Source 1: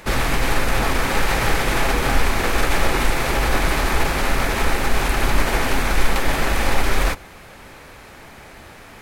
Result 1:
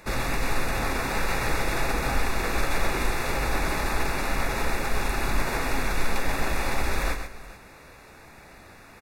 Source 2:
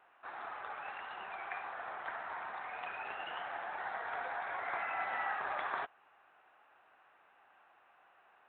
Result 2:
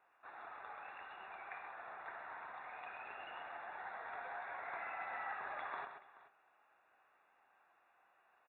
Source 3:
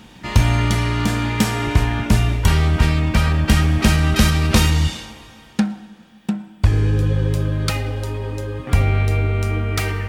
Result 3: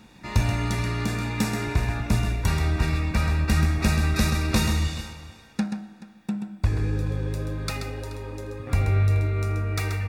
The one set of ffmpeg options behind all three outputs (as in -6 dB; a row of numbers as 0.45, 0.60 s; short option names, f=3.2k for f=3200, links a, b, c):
-af "flanger=delay=9.3:depth=7:regen=86:speed=0.21:shape=sinusoidal,asuperstop=centerf=3100:order=12:qfactor=7,aecho=1:1:131|429:0.398|0.126,volume=-3dB"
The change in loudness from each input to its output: -7.0, -7.0, -7.0 LU